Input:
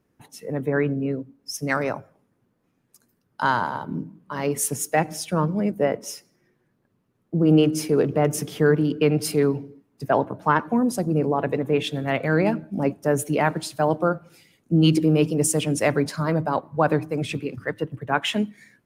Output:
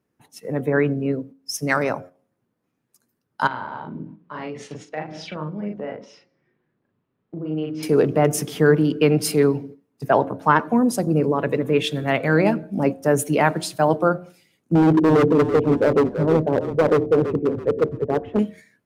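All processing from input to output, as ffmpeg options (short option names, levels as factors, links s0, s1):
-filter_complex "[0:a]asettb=1/sr,asplit=3[s0][s1][s2];[s0]atrim=end=3.474[s3];[s1]atrim=start=3.47:end=7.83,asetpts=PTS-STARTPTS,afade=t=in:d=0.004:c=qsin,afade=t=out:st=4.356:d=0.004:c=qsin,lowpass=f=3900:w=0.5412,lowpass=f=3900:w=1.3066,acompressor=threshold=0.0178:ratio=3:attack=3.2:release=140:knee=1:detection=peak,asplit=2[s4][s5];[s5]adelay=39,volume=0.708[s6];[s4][s6]amix=inputs=2:normalize=0,atrim=end_sample=192276[s7];[s2]atrim=start=7.826[s8];[s3][s7]acrossfade=d=0.004:c1=hsin:c2=qsin[s9];[s9][s8]acrossfade=d=0.004:c1=qsin:c2=hsin,asettb=1/sr,asplit=3[s10][s11][s12];[s10]atrim=end=11.204[s13];[s11]atrim=start=11.2:end=12.03,asetpts=PTS-STARTPTS,afade=t=in:d=0.004:c=qsin,afade=t=out:st=0.826:d=0.004:c=qsin,equalizer=f=760:w=5.4:g=-12,acompressor=mode=upward:threshold=0.0562:ratio=2.5:attack=3.2:release=140:knee=2.83:detection=peak[s14];[s12]atrim=start=12.026[s15];[s13][s14]acrossfade=d=0.004:c1=hsin:c2=qsin[s16];[s16][s15]acrossfade=d=0.004:c1=qsin:c2=hsin,asettb=1/sr,asplit=3[s17][s18][s19];[s17]atrim=end=14.754[s20];[s18]atrim=start=14.75:end=18.39,asetpts=PTS-STARTPTS,afade=t=in:d=0.004:c=qsin,afade=t=out:st=3.636:d=0.004:c=qsin,lowpass=f=460:t=q:w=2.9,asoftclip=type=hard:threshold=0.178,asplit=5[s21][s22][s23][s24][s25];[s22]adelay=333,afreqshift=-31,volume=0.299[s26];[s23]adelay=666,afreqshift=-62,volume=0.107[s27];[s24]adelay=999,afreqshift=-93,volume=0.0389[s28];[s25]adelay=1332,afreqshift=-124,volume=0.014[s29];[s21][s26][s27][s28][s29]amix=inputs=5:normalize=0,atrim=end_sample=160524[s30];[s19]atrim=start=18.386[s31];[s20][s30]acrossfade=d=0.004:c1=hsin:c2=qsin[s32];[s32][s31]acrossfade=d=0.004:c1=qsin:c2=hsin,bandreject=f=89.75:t=h:w=4,bandreject=f=179.5:t=h:w=4,bandreject=f=269.25:t=h:w=4,bandreject=f=359:t=h:w=4,bandreject=f=448.75:t=h:w=4,bandreject=f=538.5:t=h:w=4,bandreject=f=628.25:t=h:w=4,bandreject=f=718:t=h:w=4,agate=range=0.398:threshold=0.00891:ratio=16:detection=peak,lowshelf=f=61:g=-9.5,volume=1.5"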